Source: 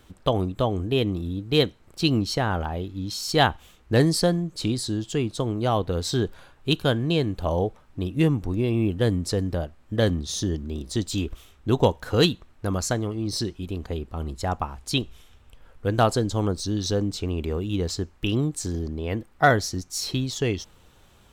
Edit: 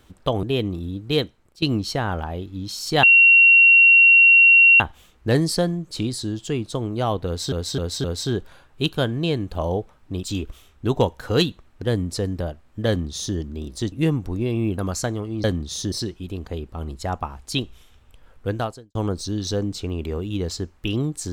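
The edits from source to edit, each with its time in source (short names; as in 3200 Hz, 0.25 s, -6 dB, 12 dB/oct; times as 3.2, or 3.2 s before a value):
0.43–0.85 cut
1.36–2.04 fade out equal-power, to -18.5 dB
3.45 add tone 2740 Hz -8.5 dBFS 1.77 s
5.91–6.17 loop, 4 plays
8.1–8.96 swap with 11.06–12.65
10.02–10.5 copy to 13.31
15.88–16.34 fade out quadratic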